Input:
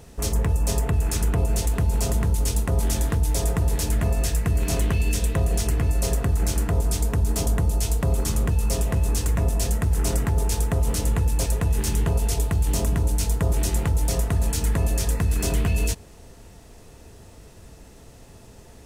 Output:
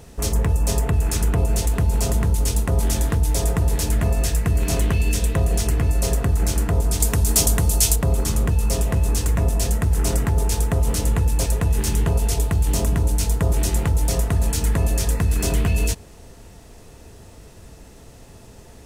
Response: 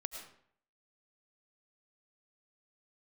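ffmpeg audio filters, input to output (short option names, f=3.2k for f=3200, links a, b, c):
-filter_complex "[0:a]asettb=1/sr,asplit=3[a][b][c];[a]atrim=end=7.004[d];[b]atrim=start=7:end=7.96,asetpts=PTS-STARTPTS,afade=t=in:d=0.004:c=qsin,afade=t=out:st=0.956:d=0.004:c=qsin,highshelf=f=2.5k:g=11.5[e];[c]atrim=start=7.956[f];[d][e]acrossfade=d=0.004:c1=hsin:c2=qsin[g];[g][f]acrossfade=d=0.004:c1=qsin:c2=hsin,volume=2.5dB"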